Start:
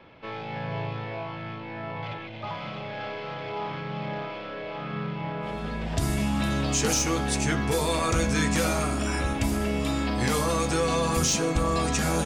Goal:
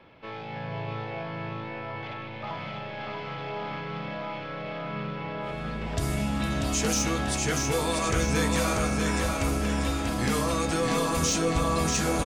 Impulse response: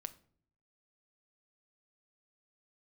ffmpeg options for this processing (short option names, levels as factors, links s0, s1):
-af "aecho=1:1:639|1278|1917|2556|3195|3834:0.631|0.303|0.145|0.0698|0.0335|0.0161,volume=0.75"